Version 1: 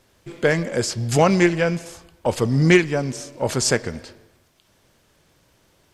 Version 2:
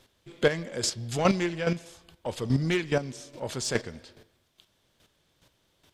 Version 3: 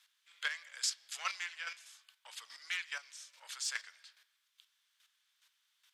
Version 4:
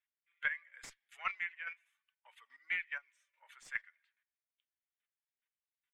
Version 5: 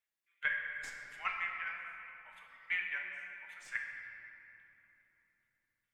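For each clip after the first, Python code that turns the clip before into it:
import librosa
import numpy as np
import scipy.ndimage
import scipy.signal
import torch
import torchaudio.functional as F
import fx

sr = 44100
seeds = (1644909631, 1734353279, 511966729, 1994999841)

y1 = fx.peak_eq(x, sr, hz=3500.0, db=7.5, octaves=0.55)
y1 = 10.0 ** (-7.5 / 20.0) * np.tanh(y1 / 10.0 ** (-7.5 / 20.0))
y1 = fx.chopper(y1, sr, hz=2.4, depth_pct=65, duty_pct=15)
y1 = y1 * 10.0 ** (-2.0 / 20.0)
y2 = scipy.signal.sosfilt(scipy.signal.butter(4, 1300.0, 'highpass', fs=sr, output='sos'), y1)
y2 = y2 * 10.0 ** (-5.0 / 20.0)
y3 = fx.bin_expand(y2, sr, power=1.5)
y3 = fx.cheby_harmonics(y3, sr, harmonics=(2,), levels_db=(-19,), full_scale_db=-22.0)
y3 = fx.high_shelf_res(y3, sr, hz=3100.0, db=-13.5, q=3.0)
y3 = y3 * 10.0 ** (-1.5 / 20.0)
y4 = fx.room_shoebox(y3, sr, seeds[0], volume_m3=210.0, walls='hard', distance_m=0.49)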